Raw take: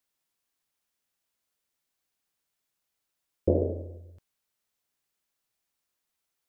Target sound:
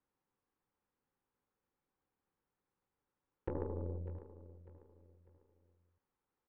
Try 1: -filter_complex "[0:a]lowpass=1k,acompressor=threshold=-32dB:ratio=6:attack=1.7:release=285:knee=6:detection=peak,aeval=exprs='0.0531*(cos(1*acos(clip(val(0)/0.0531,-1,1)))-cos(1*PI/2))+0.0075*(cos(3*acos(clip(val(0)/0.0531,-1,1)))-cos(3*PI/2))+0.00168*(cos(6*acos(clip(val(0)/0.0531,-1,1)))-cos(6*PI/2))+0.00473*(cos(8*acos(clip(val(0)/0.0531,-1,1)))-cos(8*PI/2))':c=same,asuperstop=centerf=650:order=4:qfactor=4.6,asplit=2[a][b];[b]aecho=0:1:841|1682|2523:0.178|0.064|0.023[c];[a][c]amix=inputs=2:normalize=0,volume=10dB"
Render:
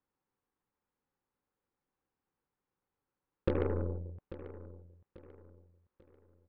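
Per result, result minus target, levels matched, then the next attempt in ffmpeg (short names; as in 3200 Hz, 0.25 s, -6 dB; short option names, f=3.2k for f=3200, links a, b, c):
echo 0.243 s late; compressor: peak gain reduction -7 dB
-filter_complex "[0:a]lowpass=1k,acompressor=threshold=-32dB:ratio=6:attack=1.7:release=285:knee=6:detection=peak,aeval=exprs='0.0531*(cos(1*acos(clip(val(0)/0.0531,-1,1)))-cos(1*PI/2))+0.0075*(cos(3*acos(clip(val(0)/0.0531,-1,1)))-cos(3*PI/2))+0.00168*(cos(6*acos(clip(val(0)/0.0531,-1,1)))-cos(6*PI/2))+0.00473*(cos(8*acos(clip(val(0)/0.0531,-1,1)))-cos(8*PI/2))':c=same,asuperstop=centerf=650:order=4:qfactor=4.6,asplit=2[a][b];[b]aecho=0:1:598|1196|1794:0.178|0.064|0.023[c];[a][c]amix=inputs=2:normalize=0,volume=10dB"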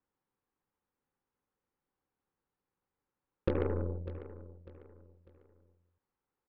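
compressor: peak gain reduction -7 dB
-filter_complex "[0:a]lowpass=1k,acompressor=threshold=-40.5dB:ratio=6:attack=1.7:release=285:knee=6:detection=peak,aeval=exprs='0.0531*(cos(1*acos(clip(val(0)/0.0531,-1,1)))-cos(1*PI/2))+0.0075*(cos(3*acos(clip(val(0)/0.0531,-1,1)))-cos(3*PI/2))+0.00168*(cos(6*acos(clip(val(0)/0.0531,-1,1)))-cos(6*PI/2))+0.00473*(cos(8*acos(clip(val(0)/0.0531,-1,1)))-cos(8*PI/2))':c=same,asuperstop=centerf=650:order=4:qfactor=4.6,asplit=2[a][b];[b]aecho=0:1:598|1196|1794:0.178|0.064|0.023[c];[a][c]amix=inputs=2:normalize=0,volume=10dB"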